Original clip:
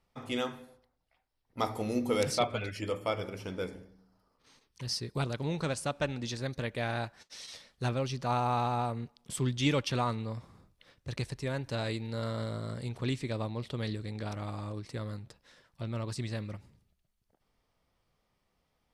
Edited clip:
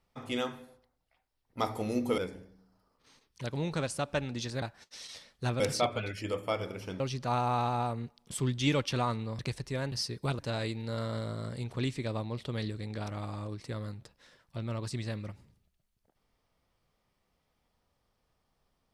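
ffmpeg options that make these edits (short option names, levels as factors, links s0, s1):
-filter_complex "[0:a]asplit=9[s0][s1][s2][s3][s4][s5][s6][s7][s8];[s0]atrim=end=2.182[s9];[s1]atrim=start=3.578:end=4.842[s10];[s2]atrim=start=5.308:end=6.492[s11];[s3]atrim=start=7.008:end=7.992[s12];[s4]atrim=start=2.178:end=3.582[s13];[s5]atrim=start=7.988:end=10.382[s14];[s6]atrim=start=11.108:end=11.642[s15];[s7]atrim=start=4.838:end=5.312[s16];[s8]atrim=start=11.638[s17];[s9][s10]acrossfade=d=0.004:c1=hsin:c2=hsin[s18];[s18][s11]acrossfade=d=0.004:c1=hsin:c2=hsin[s19];[s19][s12]acrossfade=d=0.004:c1=hsin:c2=hsin[s20];[s20][s13]acrossfade=d=0.004:c1=hsin:c2=hsin[s21];[s21][s14]acrossfade=d=0.004:c1=hsin:c2=hsin[s22];[s22][s15]acrossfade=d=0.004:c1=hsin:c2=hsin[s23];[s23][s16]acrossfade=d=0.004:c1=hsin:c2=hsin[s24];[s24][s17]acrossfade=d=0.004:c1=hsin:c2=hsin"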